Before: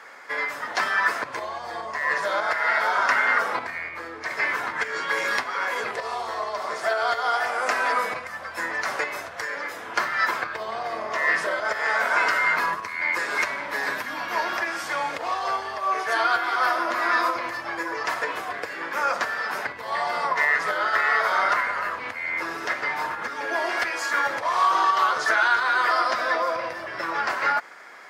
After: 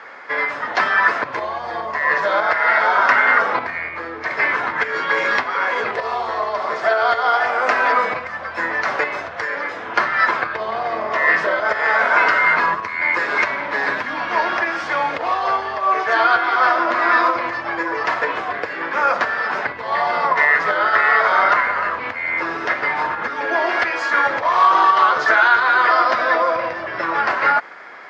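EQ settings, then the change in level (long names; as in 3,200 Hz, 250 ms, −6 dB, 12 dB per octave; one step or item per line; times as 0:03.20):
high-frequency loss of the air 190 metres
+8.0 dB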